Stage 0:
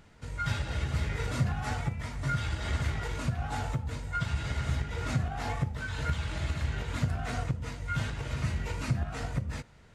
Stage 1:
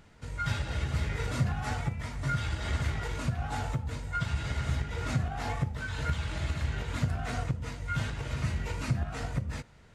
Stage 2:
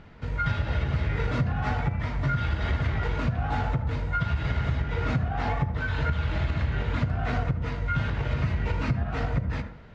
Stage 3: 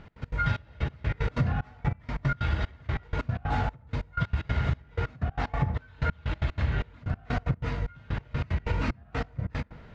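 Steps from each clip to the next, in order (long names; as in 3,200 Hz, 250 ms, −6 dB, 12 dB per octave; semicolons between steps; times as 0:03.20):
no processing that can be heard
convolution reverb RT60 0.55 s, pre-delay 67 ms, DRR 10 dB; downward compressor, threshold −30 dBFS, peak gain reduction 8.5 dB; high-frequency loss of the air 230 metres; level +8.5 dB
gate pattern "x.x.xxx...x.." 187 BPM −24 dB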